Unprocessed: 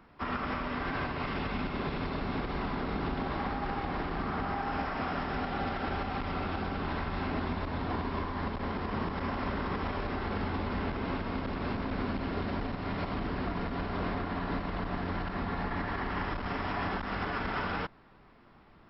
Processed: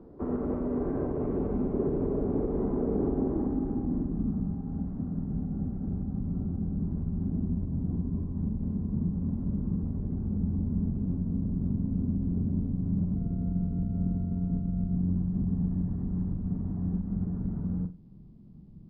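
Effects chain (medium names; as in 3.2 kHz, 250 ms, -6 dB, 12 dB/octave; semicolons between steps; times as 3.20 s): 13.16–14.96 s: sorted samples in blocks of 64 samples; in parallel at +2 dB: compression 5:1, threshold -42 dBFS, peak gain reduction 12 dB; on the sum: flutter echo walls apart 7.7 m, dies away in 0.27 s; low-pass sweep 420 Hz -> 180 Hz, 3.08–4.51 s; Nellymoser 22 kbps 11.025 kHz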